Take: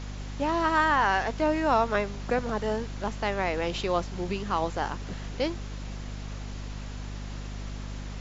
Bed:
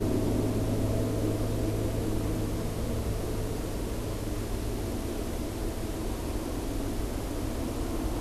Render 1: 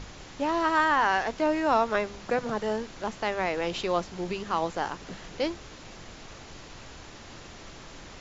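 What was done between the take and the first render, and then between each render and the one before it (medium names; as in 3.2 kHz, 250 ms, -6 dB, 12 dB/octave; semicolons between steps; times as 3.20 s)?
hum notches 50/100/150/200/250 Hz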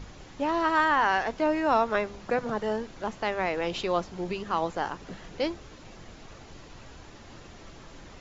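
noise reduction 6 dB, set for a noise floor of -46 dBFS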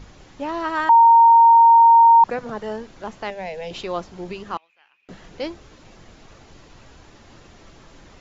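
0.89–2.24 s: bleep 924 Hz -7.5 dBFS; 3.30–3.71 s: static phaser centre 330 Hz, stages 6; 4.57–5.09 s: band-pass filter 2.5 kHz, Q 16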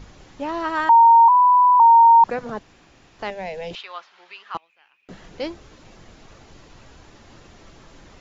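1.28–1.80 s: bleep 991 Hz -10.5 dBFS; 2.59–3.19 s: room tone; 3.75–4.55 s: Butterworth band-pass 2.2 kHz, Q 0.73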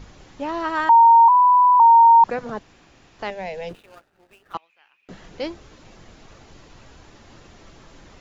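3.69–4.54 s: median filter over 41 samples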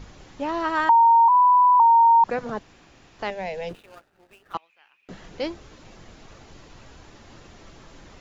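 compression, threshold -13 dBFS, peak gain reduction 4 dB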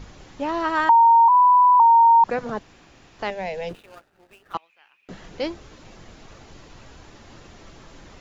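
trim +1.5 dB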